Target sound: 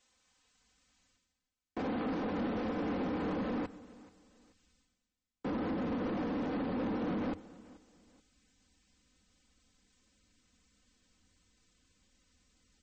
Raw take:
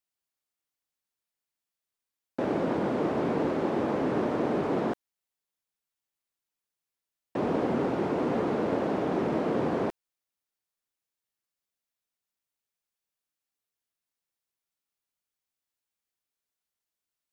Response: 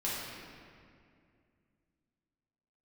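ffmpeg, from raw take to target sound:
-filter_complex "[0:a]equalizer=f=66:w=2:g=4,aecho=1:1:5.3:0.95,asubboost=boost=7:cutoff=190,areverse,acompressor=mode=upward:threshold=0.00891:ratio=2.5,areverse,alimiter=limit=0.224:level=0:latency=1:release=187,asoftclip=type=tanh:threshold=0.0531,aecho=1:1:584|1168:0.0891|0.0285,asplit=2[s0][s1];[1:a]atrim=start_sample=2205,afade=t=out:st=0.42:d=0.01,atrim=end_sample=18963,adelay=65[s2];[s1][s2]afir=irnorm=-1:irlink=0,volume=0.0562[s3];[s0][s3]amix=inputs=2:normalize=0,asetrate=59535,aresample=44100,volume=0.501" -ar 44100 -c:a libmp3lame -b:a 32k

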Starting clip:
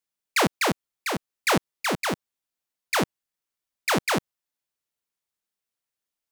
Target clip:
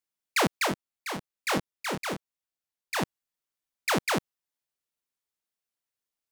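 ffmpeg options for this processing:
-filter_complex "[0:a]asplit=3[s0][s1][s2];[s0]afade=t=out:st=0.66:d=0.02[s3];[s1]flanger=delay=19.5:depth=7.1:speed=1.2,afade=t=in:st=0.66:d=0.02,afade=t=out:st=3.01:d=0.02[s4];[s2]afade=t=in:st=3.01:d=0.02[s5];[s3][s4][s5]amix=inputs=3:normalize=0,volume=0.708"

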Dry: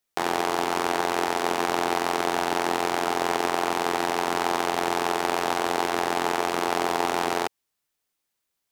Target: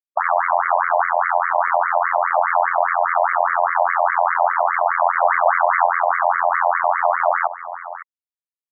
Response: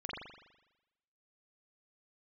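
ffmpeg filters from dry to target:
-filter_complex "[0:a]lowshelf=f=290:t=q:w=3:g=7.5,acrusher=bits=3:mix=0:aa=0.5,highpass=f=210:t=q:w=0.5412,highpass=f=210:t=q:w=1.307,lowpass=f=3100:t=q:w=0.5176,lowpass=f=3100:t=q:w=0.7071,lowpass=f=3100:t=q:w=1.932,afreqshift=-77,asplit=2[s0][s1];[s1]highpass=f=720:p=1,volume=10,asoftclip=type=tanh:threshold=0.501[s2];[s0][s2]amix=inputs=2:normalize=0,lowpass=f=1800:p=1,volume=0.501,asettb=1/sr,asplit=3[s3][s4][s5];[s3]atrim=end=5.124[s6];[s4]atrim=start=5.12:end=5.87,asetpts=PTS-STARTPTS,afade=t=in:d=0.004:c=qsin,afade=t=out:st=0.746:d=0.004:c=qsin,asoftclip=type=hard:threshold=0.106[s7];[s5]atrim=start=5.866[s8];[s6][s7]acrossfade=d=0.004:c1=hsin:c2=qsin[s9];[s9][s8]acrossfade=d=0.004:c1=qsin:c2=hsin,asplit=2[s10][s11];[s11]aecho=0:1:553:0.0891[s12];[s10][s12]amix=inputs=2:normalize=0,alimiter=level_in=7.5:limit=0.891:release=50:level=0:latency=1,afftfilt=real='re*between(b*sr/1024,740*pow(1600/740,0.5+0.5*sin(2*PI*4.9*pts/sr))/1.41,740*pow(1600/740,0.5+0.5*sin(2*PI*4.9*pts/sr))*1.41)':imag='im*between(b*sr/1024,740*pow(1600/740,0.5+0.5*sin(2*PI*4.9*pts/sr))/1.41,740*pow(1600/740,0.5+0.5*sin(2*PI*4.9*pts/sr))*1.41)':win_size=1024:overlap=0.75,volume=0.668"

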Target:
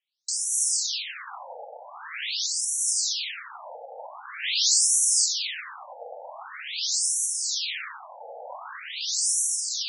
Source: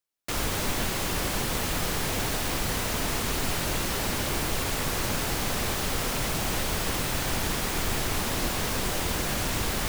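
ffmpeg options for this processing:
-filter_complex "[0:a]alimiter=limit=0.0841:level=0:latency=1:release=42,crystalizer=i=7:c=0,asplit=3[s0][s1][s2];[s0]afade=t=out:st=4.42:d=0.02[s3];[s1]acontrast=69,afade=t=in:st=4.42:d=0.02,afade=t=out:st=5.24:d=0.02[s4];[s2]afade=t=in:st=5.24:d=0.02[s5];[s3][s4][s5]amix=inputs=3:normalize=0,tremolo=f=1.3:d=0.41,afftfilt=real='re*between(b*sr/1024,610*pow(8000/610,0.5+0.5*sin(2*PI*0.45*pts/sr))/1.41,610*pow(8000/610,0.5+0.5*sin(2*PI*0.45*pts/sr))*1.41)':imag='im*between(b*sr/1024,610*pow(8000/610,0.5+0.5*sin(2*PI*0.45*pts/sr))/1.41,610*pow(8000/610,0.5+0.5*sin(2*PI*0.45*pts/sr))*1.41)':win_size=1024:overlap=0.75"

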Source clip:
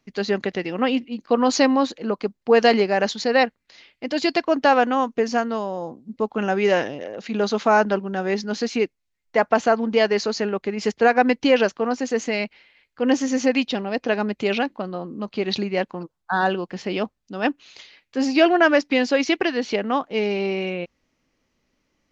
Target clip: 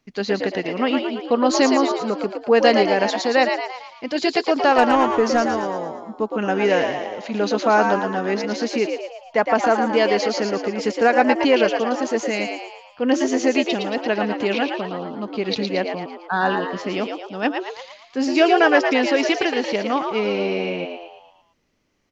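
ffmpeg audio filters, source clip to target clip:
-filter_complex "[0:a]asettb=1/sr,asplit=3[s0][s1][s2];[s0]atrim=end=4.784[s3];[s1]atrim=start=4.78:end=5.46,asetpts=PTS-STARTPTS,afade=t=in:d=0.004:c=qsin,afade=t=out:st=0.676:d=0.004:c=qsin,aeval=exprs='0.531*(cos(1*acos(clip(val(0)/0.531,-1,1)))-cos(1*PI/2))+0.0668*(cos(5*acos(clip(val(0)/0.531,-1,1)))-cos(5*PI/2))':c=same[s4];[s2]atrim=start=5.456[s5];[s3][s4]acrossfade=d=0.004:c1=hsin:c2=qsin[s6];[s6][s5]acrossfade=d=0.004:c1=qsin:c2=hsin,asplit=7[s7][s8][s9][s10][s11][s12][s13];[s8]adelay=113,afreqshift=80,volume=0.531[s14];[s9]adelay=226,afreqshift=160,volume=0.266[s15];[s10]adelay=339,afreqshift=240,volume=0.133[s16];[s11]adelay=452,afreqshift=320,volume=0.0661[s17];[s12]adelay=565,afreqshift=400,volume=0.0331[s18];[s13]adelay=678,afreqshift=480,volume=0.0166[s19];[s7][s14][s15][s16][s17][s18][s19]amix=inputs=7:normalize=0"

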